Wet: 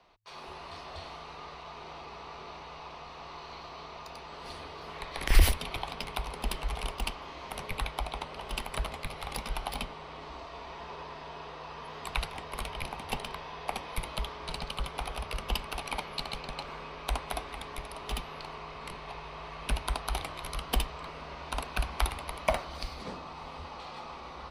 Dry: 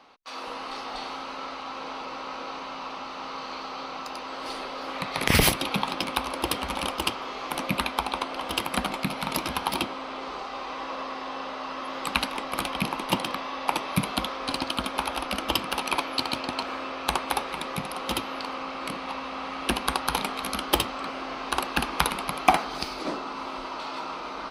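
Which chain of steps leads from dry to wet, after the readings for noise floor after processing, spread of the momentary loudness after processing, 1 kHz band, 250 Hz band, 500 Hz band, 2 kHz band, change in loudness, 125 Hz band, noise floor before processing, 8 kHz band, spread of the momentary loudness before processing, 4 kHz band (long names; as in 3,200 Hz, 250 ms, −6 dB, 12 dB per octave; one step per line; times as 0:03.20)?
−46 dBFS, 11 LU, −9.5 dB, −13.0 dB, −7.0 dB, −8.5 dB, −8.0 dB, −1.5 dB, −37 dBFS, −8.5 dB, 10 LU, −9.0 dB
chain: low shelf with overshoot 120 Hz +12 dB, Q 3
frequency shifter −110 Hz
level −8.5 dB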